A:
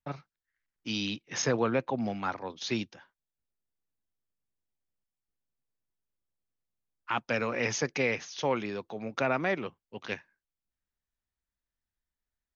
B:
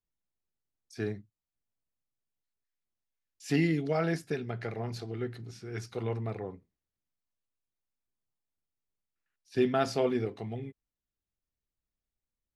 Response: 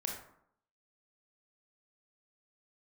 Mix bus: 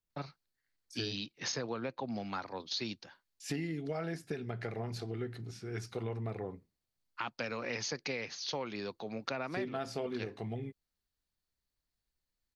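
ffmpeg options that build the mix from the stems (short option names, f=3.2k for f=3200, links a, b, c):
-filter_complex "[0:a]equalizer=f=4.4k:w=3.6:g=13,adelay=100,volume=-2.5dB[a];[1:a]volume=0dB[b];[a][b]amix=inputs=2:normalize=0,acompressor=threshold=-34dB:ratio=6"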